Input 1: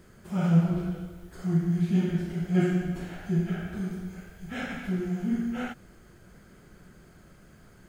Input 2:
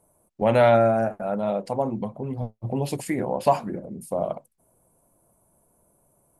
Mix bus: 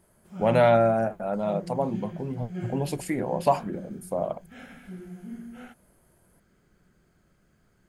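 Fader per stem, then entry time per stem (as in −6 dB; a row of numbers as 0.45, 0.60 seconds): −11.5, −2.0 decibels; 0.00, 0.00 seconds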